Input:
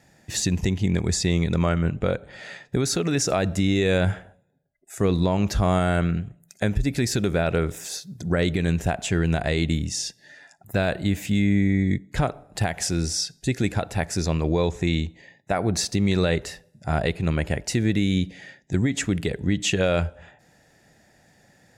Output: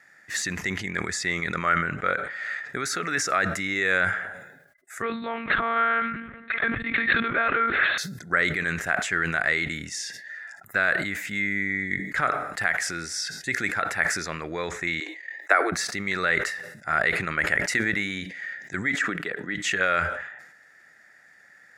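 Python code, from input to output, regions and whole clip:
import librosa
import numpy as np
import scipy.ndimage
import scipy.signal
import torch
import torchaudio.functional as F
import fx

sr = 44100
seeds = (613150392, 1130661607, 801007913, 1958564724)

y = fx.chain(x, sr, fx.lpc_monotone(seeds[0], pitch_hz=230.0, order=10),
    fx.sustainer(db_per_s=22.0), at=(5.02, 7.98))
y = fx.chain(y, sr, fx.steep_highpass(hz=280.0, slope=96),
    fx.transient(attack_db=7, sustain_db=-10), at=(15.0, 15.72))
y = fx.chain(y, sr, fx.hum_notches(base_hz=60, count=6),
    fx.transient(attack_db=5, sustain_db=0), at=(17.52, 18.22))
y = fx.chain(y, sr, fx.highpass(hz=190.0, slope=12),
    fx.peak_eq(hz=9500.0, db=-9.5, octaves=2.0),
    fx.notch(hz=2100.0, q=8.5), at=(18.96, 19.55))
y = fx.highpass(y, sr, hz=560.0, slope=6)
y = fx.band_shelf(y, sr, hz=1600.0, db=14.5, octaves=1.1)
y = fx.sustainer(y, sr, db_per_s=58.0)
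y = y * 10.0 ** (-4.5 / 20.0)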